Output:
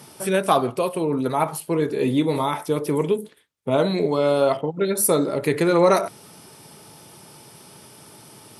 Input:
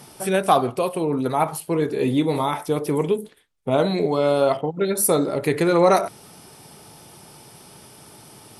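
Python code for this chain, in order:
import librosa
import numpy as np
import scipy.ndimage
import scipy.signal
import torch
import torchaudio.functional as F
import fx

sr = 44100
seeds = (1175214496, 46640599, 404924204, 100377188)

y = scipy.signal.sosfilt(scipy.signal.butter(2, 88.0, 'highpass', fs=sr, output='sos'), x)
y = fx.notch(y, sr, hz=750.0, q=12.0)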